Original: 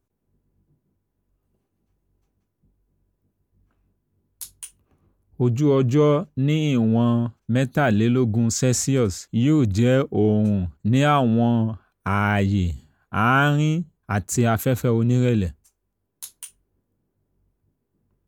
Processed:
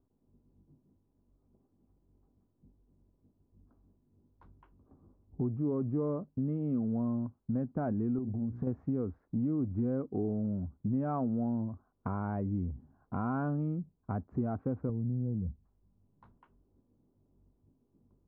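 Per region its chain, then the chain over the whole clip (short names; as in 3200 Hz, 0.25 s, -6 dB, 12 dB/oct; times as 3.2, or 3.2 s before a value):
8.18–8.67 low shelf 420 Hz +8.5 dB + notches 60/120/180/240/300/360/420/480/540 Hz + compressor 10:1, threshold -20 dBFS
14.89–16.37 resonant low shelf 230 Hz +7 dB, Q 1.5 + compressor 4:1, threshold -18 dBFS + treble ducked by the level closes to 590 Hz, closed at -19 dBFS
whole clip: LPF 1100 Hz 24 dB/oct; bell 260 Hz +7 dB 0.44 oct; compressor 2.5:1, threshold -38 dBFS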